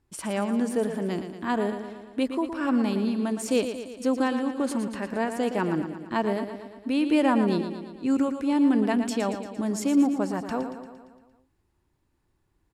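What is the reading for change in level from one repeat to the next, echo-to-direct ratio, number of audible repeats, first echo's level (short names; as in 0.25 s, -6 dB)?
-4.5 dB, -7.0 dB, 6, -9.0 dB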